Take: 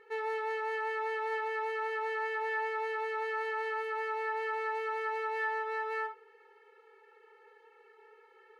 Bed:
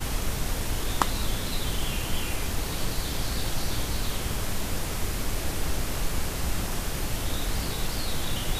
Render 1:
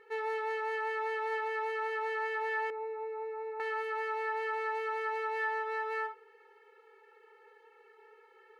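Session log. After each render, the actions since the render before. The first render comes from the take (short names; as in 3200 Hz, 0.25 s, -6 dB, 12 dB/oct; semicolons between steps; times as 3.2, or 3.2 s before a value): 2.7–3.6 running mean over 28 samples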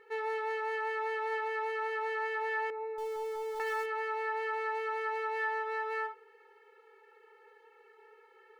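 2.98–3.86 zero-crossing step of -42.5 dBFS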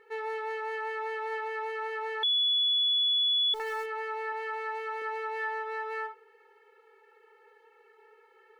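2.23–3.54 bleep 3410 Hz -23 dBFS; 4.32–5.02 tone controls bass -14 dB, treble 0 dB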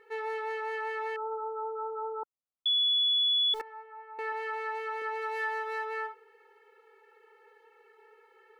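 1.16–2.66 brick-wall FIR low-pass 1400 Hz; 3.61–4.19 ladder band-pass 760 Hz, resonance 65%; 5.21–5.84 high shelf 5300 Hz -> 4300 Hz +9.5 dB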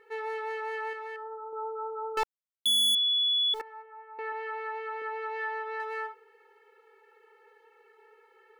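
0.93–1.53 resonator 93 Hz, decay 0.48 s, mix 50%; 2.17–2.95 sample leveller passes 5; 3.82–5.8 air absorption 190 m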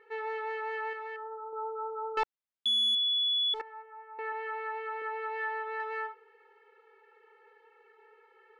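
LPF 3700 Hz 12 dB/oct; low shelf 270 Hz -5.5 dB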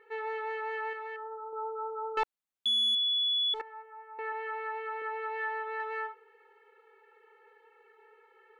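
bell 5100 Hz -5.5 dB 0.23 oct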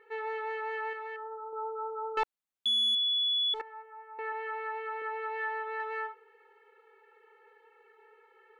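nothing audible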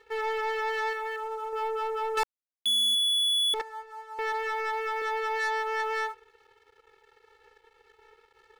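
sample leveller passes 3; upward expander 1.5:1, over -37 dBFS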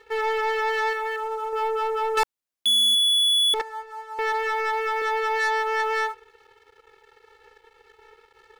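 gain +5.5 dB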